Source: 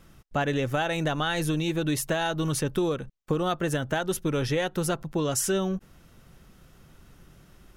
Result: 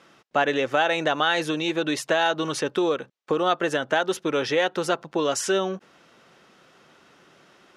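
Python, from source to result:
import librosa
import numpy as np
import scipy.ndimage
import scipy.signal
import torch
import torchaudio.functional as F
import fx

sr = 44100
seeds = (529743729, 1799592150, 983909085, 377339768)

y = fx.bandpass_edges(x, sr, low_hz=380.0, high_hz=5200.0)
y = F.gain(torch.from_numpy(y), 6.5).numpy()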